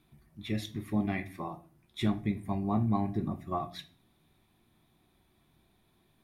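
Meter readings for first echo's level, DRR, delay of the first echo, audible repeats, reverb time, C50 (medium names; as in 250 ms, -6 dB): no echo, 8.0 dB, no echo, no echo, 0.45 s, 17.0 dB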